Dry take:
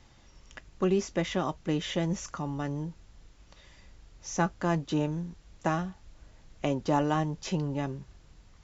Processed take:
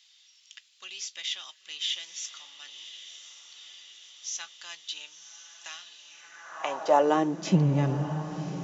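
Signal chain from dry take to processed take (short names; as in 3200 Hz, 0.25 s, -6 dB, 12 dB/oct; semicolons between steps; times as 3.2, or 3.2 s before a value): diffused feedback echo 1.058 s, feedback 62%, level -11 dB; high-pass sweep 3400 Hz -> 140 Hz, 6.01–7.68; gain +2 dB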